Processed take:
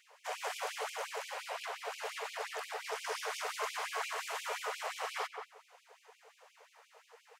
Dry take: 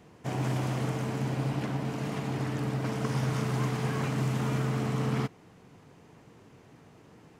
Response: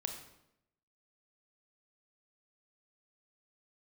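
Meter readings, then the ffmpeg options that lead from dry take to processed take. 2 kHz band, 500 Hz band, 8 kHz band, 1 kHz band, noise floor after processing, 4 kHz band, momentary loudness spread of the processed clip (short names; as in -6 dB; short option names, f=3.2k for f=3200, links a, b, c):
+0.5 dB, -6.5 dB, +1.0 dB, -1.5 dB, -68 dBFS, +1.0 dB, 4 LU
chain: -filter_complex "[0:a]asplit=2[a][b];[b]adelay=181,lowpass=f=1.1k:p=1,volume=-3.5dB,asplit=2[c][d];[d]adelay=181,lowpass=f=1.1k:p=1,volume=0.25,asplit=2[e][f];[f]adelay=181,lowpass=f=1.1k:p=1,volume=0.25,asplit=2[g][h];[h]adelay=181,lowpass=f=1.1k:p=1,volume=0.25[i];[a][c][e][g][i]amix=inputs=5:normalize=0,afftfilt=real='re*gte(b*sr/1024,410*pow(2300/410,0.5+0.5*sin(2*PI*5.7*pts/sr)))':imag='im*gte(b*sr/1024,410*pow(2300/410,0.5+0.5*sin(2*PI*5.7*pts/sr)))':win_size=1024:overlap=0.75,volume=1dB"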